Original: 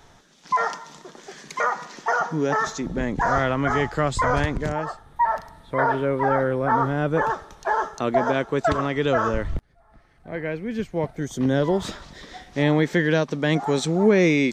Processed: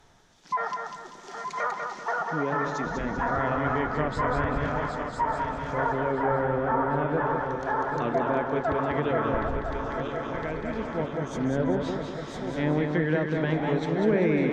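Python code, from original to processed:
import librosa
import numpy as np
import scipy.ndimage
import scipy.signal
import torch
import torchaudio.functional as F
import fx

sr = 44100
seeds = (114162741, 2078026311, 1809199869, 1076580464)

y = fx.reverse_delay_fb(x, sr, ms=504, feedback_pct=78, wet_db=-7.5)
y = fx.env_lowpass_down(y, sr, base_hz=1900.0, full_db=-15.5)
y = fx.echo_feedback(y, sr, ms=195, feedback_pct=38, wet_db=-5)
y = y * 10.0 ** (-6.5 / 20.0)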